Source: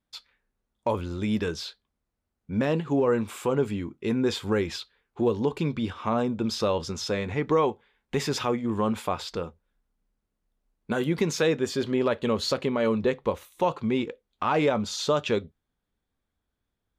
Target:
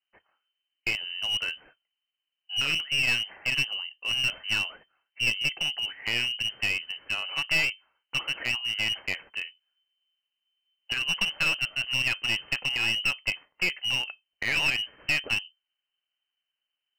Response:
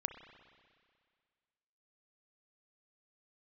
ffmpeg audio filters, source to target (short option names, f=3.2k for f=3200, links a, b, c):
-af "aeval=exprs='0.266*(cos(1*acos(clip(val(0)/0.266,-1,1)))-cos(1*PI/2))+0.0106*(cos(3*acos(clip(val(0)/0.266,-1,1)))-cos(3*PI/2))+0.0211*(cos(4*acos(clip(val(0)/0.266,-1,1)))-cos(4*PI/2))+0.00531*(cos(6*acos(clip(val(0)/0.266,-1,1)))-cos(6*PI/2))+0.00944*(cos(7*acos(clip(val(0)/0.266,-1,1)))-cos(7*PI/2))':c=same,lowpass=f=2.6k:t=q:w=0.5098,lowpass=f=2.6k:t=q:w=0.6013,lowpass=f=2.6k:t=q:w=0.9,lowpass=f=2.6k:t=q:w=2.563,afreqshift=-3100,aeval=exprs='clip(val(0),-1,0.0531)':c=same"